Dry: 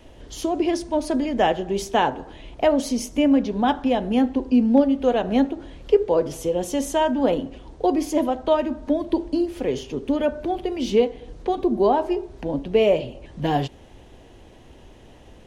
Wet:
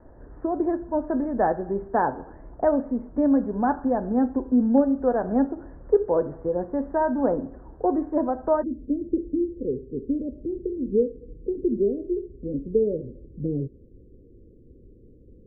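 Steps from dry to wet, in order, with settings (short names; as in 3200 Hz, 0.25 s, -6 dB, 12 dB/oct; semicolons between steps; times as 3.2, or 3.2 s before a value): steep low-pass 1700 Hz 72 dB/oct, from 8.62 s 500 Hz; gain -2.5 dB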